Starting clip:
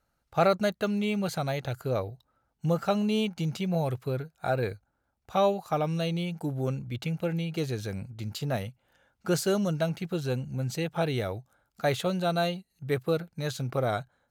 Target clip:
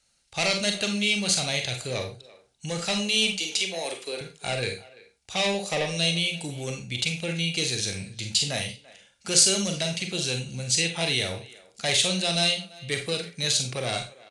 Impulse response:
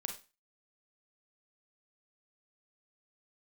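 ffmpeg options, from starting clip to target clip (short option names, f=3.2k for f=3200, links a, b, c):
-filter_complex "[0:a]asettb=1/sr,asplit=3[a][b][c];[a]atrim=end=3.334[d];[b]atrim=start=3.33:end=4.21,asetpts=PTS-STARTPTS,afade=t=in:d=0.004:c=qsin,afade=t=out:st=0.876:d=0.004:c=qsin,highpass=f=300:w=0.5412,highpass=f=300:w=1.3066[e];[c]atrim=start=4.206[f];[d][e]acrossfade=d=0.004:c1=hsin:c2=qsin[g];[g][f]acrossfade=d=0.004:c1=qsin:c2=hsin,asettb=1/sr,asplit=3[h][i][j];[h]atrim=end=5.544[k];[i]atrim=start=5.54:end=5.97,asetpts=PTS-STARTPTS,afade=t=in:d=0.004:c=qsin,afade=t=out:st=0.426:d=0.004:c=qsin,equalizer=f=520:t=o:w=0.39:g=13[l];[j]atrim=start=5.966[m];[k][l]acrossfade=d=0.004:c1=hsin:c2=qsin[n];[n][m]acrossfade=d=0.004:c1=qsin:c2=hsin,acrossover=split=380[o][p];[o]alimiter=level_in=3.5dB:limit=-24dB:level=0:latency=1,volume=-3.5dB[q];[p]asoftclip=type=tanh:threshold=-24.5dB[r];[q][r]amix=inputs=2:normalize=0,aexciter=amount=8.2:drive=2.7:freq=2k[s];[1:a]atrim=start_sample=2205,afade=t=out:st=0.2:d=0.01,atrim=end_sample=9261[t];[s][t]afir=irnorm=-1:irlink=0,aresample=22050,aresample=44100,asplit=2[u][v];[v]adelay=340,highpass=300,lowpass=3.4k,asoftclip=type=hard:threshold=-15dB,volume=-20dB[w];[u][w]amix=inputs=2:normalize=0"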